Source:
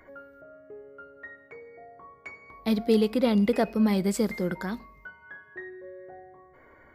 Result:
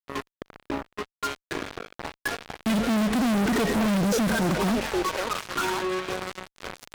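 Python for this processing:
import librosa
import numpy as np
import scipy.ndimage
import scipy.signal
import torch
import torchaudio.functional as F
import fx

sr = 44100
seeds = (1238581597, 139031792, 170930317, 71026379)

y = fx.echo_stepped(x, sr, ms=536, hz=710.0, octaves=0.7, feedback_pct=70, wet_db=-4)
y = fx.formant_shift(y, sr, semitones=-5)
y = fx.fuzz(y, sr, gain_db=50.0, gate_db=-43.0)
y = y * 10.0 ** (-8.5 / 20.0)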